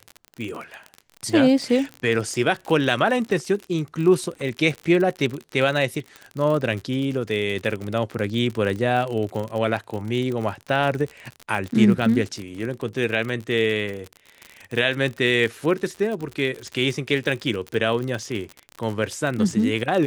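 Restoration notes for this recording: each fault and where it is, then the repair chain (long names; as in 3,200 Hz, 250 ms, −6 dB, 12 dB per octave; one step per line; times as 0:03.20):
surface crackle 45 per second −27 dBFS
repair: click removal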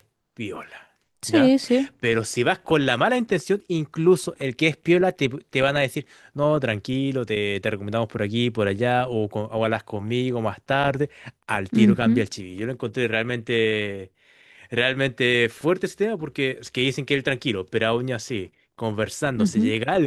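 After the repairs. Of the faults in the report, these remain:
none of them is left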